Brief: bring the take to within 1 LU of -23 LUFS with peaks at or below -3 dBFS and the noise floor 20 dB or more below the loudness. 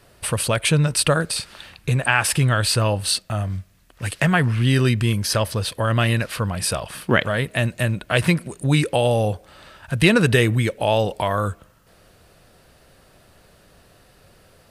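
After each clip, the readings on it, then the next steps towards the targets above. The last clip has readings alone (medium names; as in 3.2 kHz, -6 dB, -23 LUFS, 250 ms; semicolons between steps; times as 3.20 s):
loudness -20.5 LUFS; peak level -1.5 dBFS; loudness target -23.0 LUFS
-> trim -2.5 dB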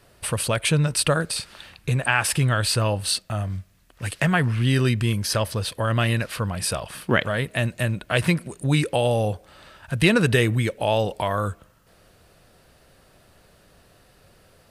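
loudness -23.0 LUFS; peak level -4.0 dBFS; noise floor -57 dBFS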